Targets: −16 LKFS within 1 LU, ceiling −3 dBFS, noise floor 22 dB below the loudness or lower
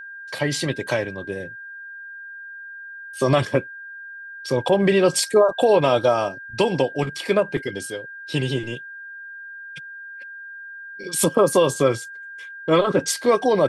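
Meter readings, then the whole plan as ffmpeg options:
interfering tone 1,600 Hz; level of the tone −35 dBFS; integrated loudness −21.0 LKFS; sample peak −4.5 dBFS; target loudness −16.0 LKFS
→ -af "bandreject=frequency=1600:width=30"
-af "volume=5dB,alimiter=limit=-3dB:level=0:latency=1"

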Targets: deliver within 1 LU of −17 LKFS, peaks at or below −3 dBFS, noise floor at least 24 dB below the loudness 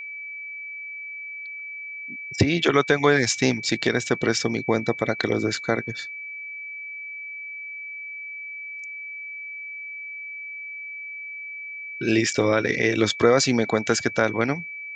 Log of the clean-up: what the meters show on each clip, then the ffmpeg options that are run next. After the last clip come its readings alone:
interfering tone 2,300 Hz; level of the tone −33 dBFS; integrated loudness −25.0 LKFS; sample peak −4.5 dBFS; target loudness −17.0 LKFS
→ -af "bandreject=frequency=2300:width=30"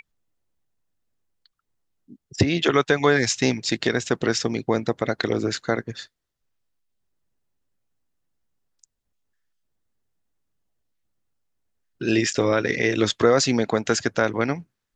interfering tone none found; integrated loudness −22.5 LKFS; sample peak −4.5 dBFS; target loudness −17.0 LKFS
→ -af "volume=5.5dB,alimiter=limit=-3dB:level=0:latency=1"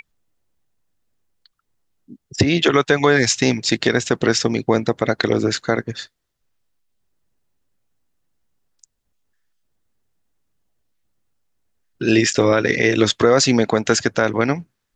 integrated loudness −17.5 LKFS; sample peak −3.0 dBFS; background noise floor −75 dBFS

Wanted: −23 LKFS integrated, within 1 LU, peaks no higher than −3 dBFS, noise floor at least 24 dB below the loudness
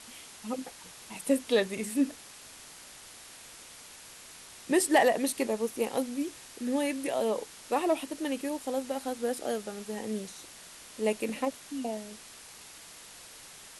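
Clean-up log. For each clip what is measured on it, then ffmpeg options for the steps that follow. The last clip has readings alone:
background noise floor −50 dBFS; target noise floor −55 dBFS; integrated loudness −31.0 LKFS; sample peak −12.0 dBFS; target loudness −23.0 LKFS
→ -af "afftdn=noise_reduction=6:noise_floor=-50"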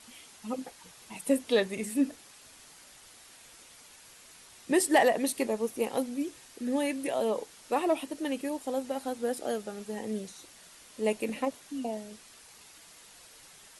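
background noise floor −54 dBFS; target noise floor −55 dBFS
→ -af "afftdn=noise_reduction=6:noise_floor=-54"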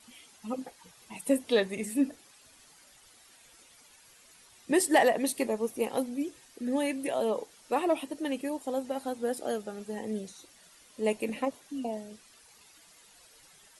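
background noise floor −58 dBFS; integrated loudness −31.0 LKFS; sample peak −12.0 dBFS; target loudness −23.0 LKFS
→ -af "volume=8dB"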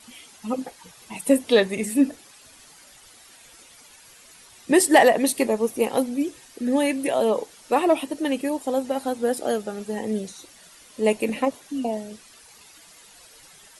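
integrated loudness −23.0 LKFS; sample peak −4.0 dBFS; background noise floor −50 dBFS

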